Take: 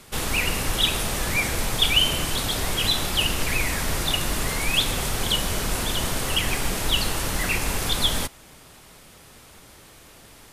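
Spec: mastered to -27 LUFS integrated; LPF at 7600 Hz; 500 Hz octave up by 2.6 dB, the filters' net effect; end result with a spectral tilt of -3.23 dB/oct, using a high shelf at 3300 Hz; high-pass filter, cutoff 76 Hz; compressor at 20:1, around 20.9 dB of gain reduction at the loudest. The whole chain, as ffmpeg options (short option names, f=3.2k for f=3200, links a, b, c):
-af "highpass=76,lowpass=7.6k,equalizer=f=500:t=o:g=3,highshelf=f=3.3k:g=6.5,acompressor=threshold=-33dB:ratio=20,volume=9dB"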